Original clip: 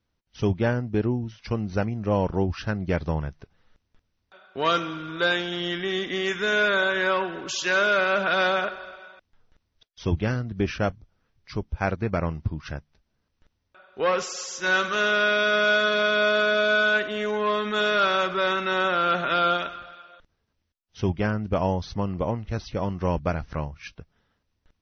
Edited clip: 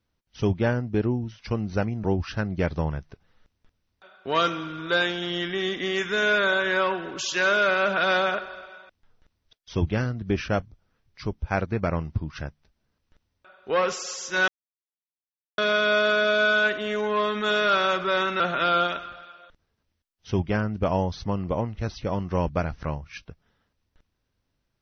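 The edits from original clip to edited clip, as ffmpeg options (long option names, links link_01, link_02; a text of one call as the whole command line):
ffmpeg -i in.wav -filter_complex "[0:a]asplit=5[link_01][link_02][link_03][link_04][link_05];[link_01]atrim=end=2.042[link_06];[link_02]atrim=start=2.338:end=14.78,asetpts=PTS-STARTPTS,afade=type=out:start_time=12.438:duration=0.004:curve=hsin[link_07];[link_03]atrim=start=14.78:end=15.88,asetpts=PTS-STARTPTS,volume=0[link_08];[link_04]atrim=start=15.88:end=18.702,asetpts=PTS-STARTPTS,afade=type=in:duration=0.004:curve=hsin[link_09];[link_05]atrim=start=19.098[link_10];[link_07][link_08][link_09]concat=n=3:v=0:a=1[link_11];[link_06][link_11]acrossfade=duration=0.004:curve1=hsin:curve2=hsin[link_12];[link_12][link_10]acrossfade=duration=0.004:curve1=hsin:curve2=hsin" out.wav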